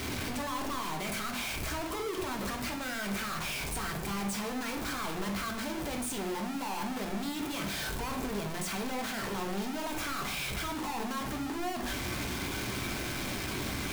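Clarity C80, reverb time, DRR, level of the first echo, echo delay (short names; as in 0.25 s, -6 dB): 11.5 dB, 0.60 s, 2.0 dB, none, none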